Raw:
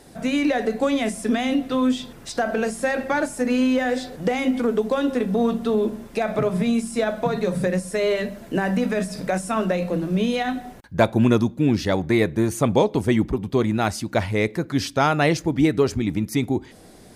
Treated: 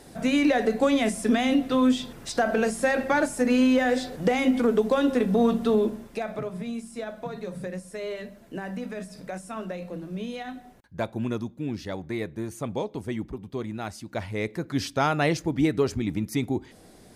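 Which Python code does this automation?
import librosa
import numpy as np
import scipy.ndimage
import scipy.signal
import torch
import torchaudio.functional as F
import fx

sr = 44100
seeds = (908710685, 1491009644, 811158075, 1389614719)

y = fx.gain(x, sr, db=fx.line((5.74, -0.5), (6.52, -12.0), (13.97, -12.0), (14.77, -4.5)))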